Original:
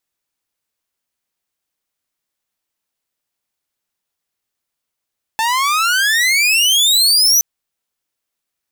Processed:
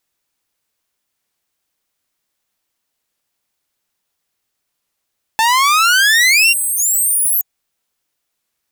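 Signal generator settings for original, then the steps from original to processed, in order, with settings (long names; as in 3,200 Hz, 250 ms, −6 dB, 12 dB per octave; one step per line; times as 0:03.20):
pitch glide with a swell saw, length 2.02 s, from 876 Hz, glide +33.5 semitones, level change +6.5 dB, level −5 dB
healed spectral selection 0:06.56–0:07.51, 750–6,700 Hz after
in parallel at −0.5 dB: brickwall limiter −16.5 dBFS
on the sum: wow of a warped record 33 1/3 rpm, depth 160 cents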